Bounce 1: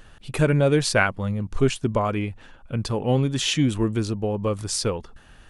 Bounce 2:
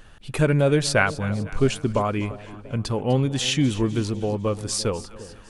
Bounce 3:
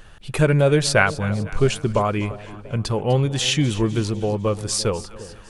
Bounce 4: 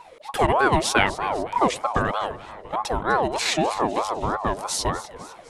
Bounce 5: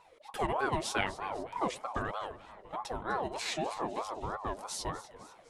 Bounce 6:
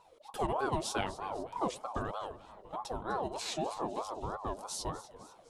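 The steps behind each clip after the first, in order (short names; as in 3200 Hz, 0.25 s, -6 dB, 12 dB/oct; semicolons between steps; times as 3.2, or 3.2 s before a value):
split-band echo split 680 Hz, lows 0.343 s, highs 0.251 s, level -16 dB
bell 260 Hz -9 dB 0.24 oct; gain +3 dB
ring modulator with a swept carrier 720 Hz, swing 35%, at 3.2 Hz
flange 0.46 Hz, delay 1.5 ms, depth 9.4 ms, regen -45%; gain -8.5 dB
bell 2000 Hz -10.5 dB 0.81 oct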